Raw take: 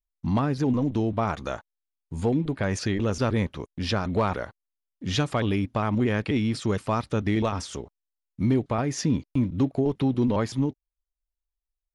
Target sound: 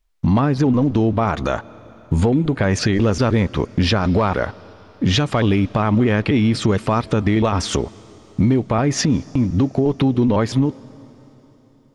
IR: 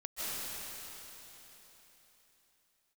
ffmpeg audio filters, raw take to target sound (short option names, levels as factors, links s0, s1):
-filter_complex "[0:a]highshelf=f=7400:g=-11,acompressor=threshold=0.0224:ratio=6,asplit=2[s0][s1];[1:a]atrim=start_sample=2205[s2];[s1][s2]afir=irnorm=-1:irlink=0,volume=0.0473[s3];[s0][s3]amix=inputs=2:normalize=0,alimiter=level_in=20:limit=0.891:release=50:level=0:latency=1,volume=0.447"